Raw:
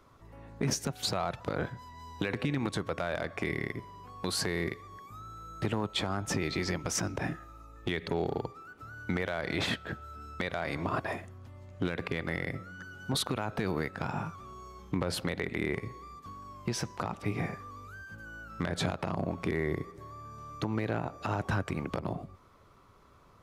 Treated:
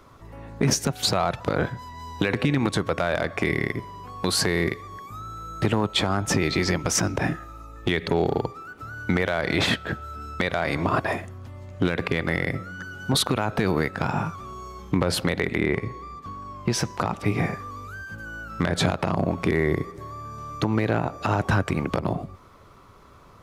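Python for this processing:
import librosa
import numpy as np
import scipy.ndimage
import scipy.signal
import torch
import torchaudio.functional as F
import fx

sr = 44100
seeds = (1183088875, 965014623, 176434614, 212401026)

y = fx.high_shelf(x, sr, hz=6000.0, db=-11.0, at=(15.57, 16.7))
y = y * librosa.db_to_amplitude(9.0)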